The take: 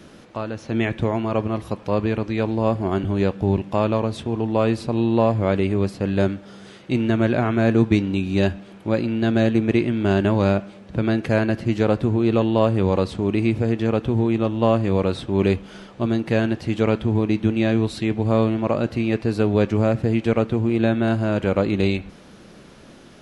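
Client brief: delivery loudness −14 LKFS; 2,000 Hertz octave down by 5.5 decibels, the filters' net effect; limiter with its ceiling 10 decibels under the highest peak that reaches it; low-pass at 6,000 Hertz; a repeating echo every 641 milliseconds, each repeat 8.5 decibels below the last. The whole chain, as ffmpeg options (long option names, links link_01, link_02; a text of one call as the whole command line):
ffmpeg -i in.wav -af "lowpass=6000,equalizer=frequency=2000:width_type=o:gain=-7.5,alimiter=limit=-15dB:level=0:latency=1,aecho=1:1:641|1282|1923|2564:0.376|0.143|0.0543|0.0206,volume=11dB" out.wav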